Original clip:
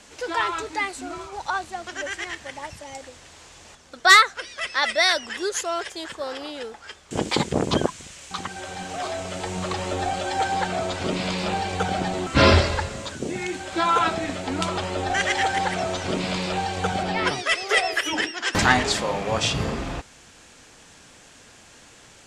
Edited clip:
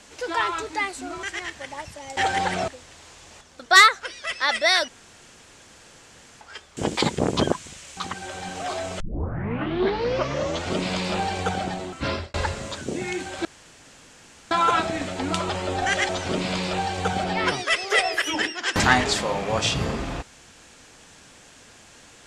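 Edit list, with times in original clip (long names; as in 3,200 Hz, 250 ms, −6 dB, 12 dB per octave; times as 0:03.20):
0:01.23–0:02.08: remove
0:05.22–0:06.75: fill with room tone
0:09.34: tape start 1.73 s
0:11.73–0:12.68: fade out
0:13.79: splice in room tone 1.06 s
0:15.37–0:15.88: move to 0:03.02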